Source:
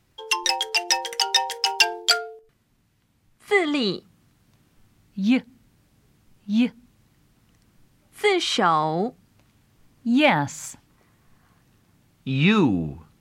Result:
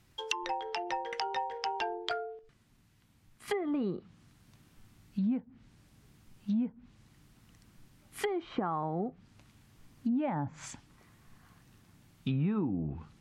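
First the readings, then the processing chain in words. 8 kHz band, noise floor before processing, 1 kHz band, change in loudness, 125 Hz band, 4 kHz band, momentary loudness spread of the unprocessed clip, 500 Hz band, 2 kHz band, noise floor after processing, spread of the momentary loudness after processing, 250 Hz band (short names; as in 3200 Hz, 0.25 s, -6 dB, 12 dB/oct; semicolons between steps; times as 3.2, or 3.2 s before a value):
-20.0 dB, -65 dBFS, -10.5 dB, -13.0 dB, -8.0 dB, -19.5 dB, 14 LU, -11.0 dB, -17.5 dB, -66 dBFS, 12 LU, -10.0 dB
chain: treble ducked by the level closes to 830 Hz, closed at -20.5 dBFS; compressor 6:1, threshold -28 dBFS, peak gain reduction 12.5 dB; bell 510 Hz -3.5 dB 1.2 oct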